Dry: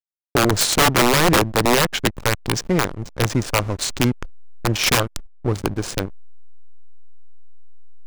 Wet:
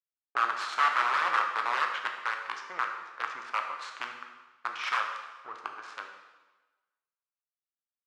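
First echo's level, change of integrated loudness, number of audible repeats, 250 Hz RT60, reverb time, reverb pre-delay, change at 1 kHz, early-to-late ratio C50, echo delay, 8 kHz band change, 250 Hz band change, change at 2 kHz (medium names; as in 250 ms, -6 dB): no echo, -11.5 dB, no echo, 1.1 s, 1.2 s, 5 ms, -5.5 dB, 5.5 dB, no echo, -28.0 dB, -35.5 dB, -7.5 dB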